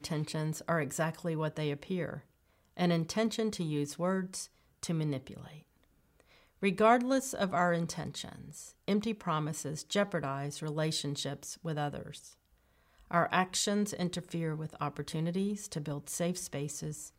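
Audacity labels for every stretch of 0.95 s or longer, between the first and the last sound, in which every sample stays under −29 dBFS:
5.170000	6.630000	silence
11.880000	13.110000	silence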